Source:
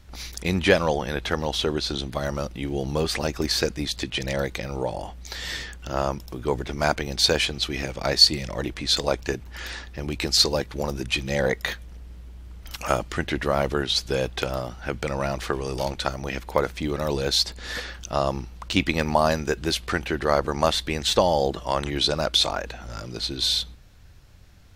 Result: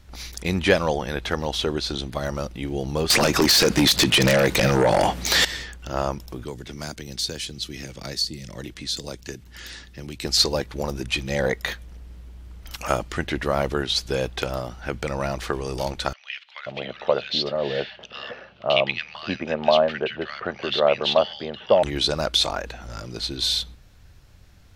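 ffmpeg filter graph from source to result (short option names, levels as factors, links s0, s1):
-filter_complex "[0:a]asettb=1/sr,asplit=3[s0][s1][s2];[s0]atrim=end=3.104[s3];[s1]atrim=start=3.1:end=5.45,asetpts=PTS-STARTPTS,afade=t=in:d=0.004:c=qsin,afade=t=out:st=2.346:d=0.004:c=qsin,highpass=130,acompressor=threshold=0.0398:ratio=5:attack=3.2:release=140:knee=1:detection=peak,aeval=exprs='0.251*sin(PI/2*5.62*val(0)/0.251)':c=same[s4];[s2]atrim=start=5.446[s5];[s3][s4]acrossfade=d=0.004:c1=hsin:c2=qsin[s6];[s6][s5]acrossfade=d=0.004:c1=qsin:c2=hsin,asettb=1/sr,asplit=3[s7][s8][s9];[s7]atrim=end=6.444[s10];[s8]atrim=start=6.44:end=10.25,asetpts=PTS-STARTPTS,afade=t=in:d=0.004:c=qsin,afade=t=out:st=3.806:d=0.004:c=qsin,equalizer=f=790:w=0.6:g=-9.5,acrossover=split=92|480|4100[s11][s12][s13][s14];[s11]acompressor=threshold=0.00282:ratio=3[s15];[s12]acompressor=threshold=0.02:ratio=3[s16];[s13]acompressor=threshold=0.0126:ratio=3[s17];[s14]acompressor=threshold=0.0447:ratio=3[s18];[s15][s16][s17][s18]amix=inputs=4:normalize=0,bandreject=f=2400:w=19[s19];[s9]atrim=start=10.246[s20];[s10][s19]acrossfade=d=0.004:c1=hsin:c2=qsin[s21];[s21][s20]acrossfade=d=0.004:c1=qsin:c2=hsin,asettb=1/sr,asplit=3[s22][s23][s24];[s22]atrim=end=16.134[s25];[s23]atrim=start=16.13:end=21.83,asetpts=PTS-STARTPTS,afade=t=in:d=0.004:c=qsin,afade=t=out:st=5.696:d=0.004:c=qsin,highpass=f=120:w=0.5412,highpass=f=120:w=1.3066,equalizer=f=160:t=q:w=4:g=-9,equalizer=f=300:t=q:w=4:g=-9,equalizer=f=610:t=q:w=4:g=7,equalizer=f=970:t=q:w=4:g=-4,equalizer=f=2900:t=q:w=4:g=8,lowpass=f=4000:w=0.5412,lowpass=f=4000:w=1.3066,acrossover=split=1600[s26][s27];[s26]adelay=530[s28];[s28][s27]amix=inputs=2:normalize=0,atrim=end_sample=251370[s29];[s24]atrim=start=21.826[s30];[s25][s29]acrossfade=d=0.004:c1=hsin:c2=qsin[s31];[s31][s30]acrossfade=d=0.004:c1=qsin:c2=hsin"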